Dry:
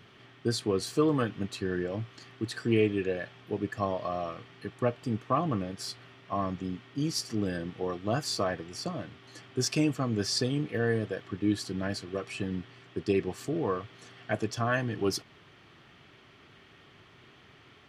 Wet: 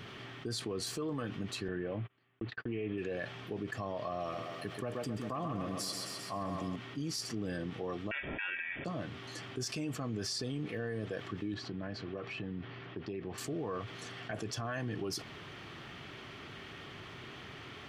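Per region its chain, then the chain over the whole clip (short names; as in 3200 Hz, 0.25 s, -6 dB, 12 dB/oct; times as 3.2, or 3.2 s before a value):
1.68–2.98 LPF 3100 Hz 24 dB/oct + gate -41 dBFS, range -55 dB
4.2–6.76 high shelf 8100 Hz +10.5 dB + thinning echo 0.13 s, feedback 57%, high-pass 180 Hz, level -7.5 dB
8.11–8.85 small resonant body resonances 220/490 Hz, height 16 dB, ringing for 35 ms + ring modulator 1400 Hz + inverted band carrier 3500 Hz
11.54–13.38 compressor, threshold -35 dBFS + air absorption 240 m
whole clip: limiter -25.5 dBFS; fast leveller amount 50%; gain -5 dB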